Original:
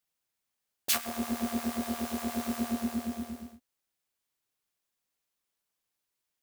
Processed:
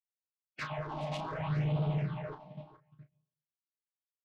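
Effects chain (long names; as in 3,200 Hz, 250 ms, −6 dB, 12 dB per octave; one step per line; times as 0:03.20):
delay that plays each chunk backwards 445 ms, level −2.5 dB
noise gate −39 dBFS, range −32 dB
single-sideband voice off tune −86 Hz 150–3,300 Hz
dynamic equaliser 870 Hz, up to +7 dB, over −53 dBFS, Q 1.7
phase-vocoder stretch with locked phases 0.66×
on a send at −22 dB: convolution reverb RT60 0.55 s, pre-delay 113 ms
on the sum: soft clipping −32 dBFS, distortion −9 dB
single-tap delay 418 ms −14.5 dB
all-pass phaser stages 6, 0.69 Hz, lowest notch 100–1,800 Hz
double-tracking delay 33 ms −8 dB
level +3 dB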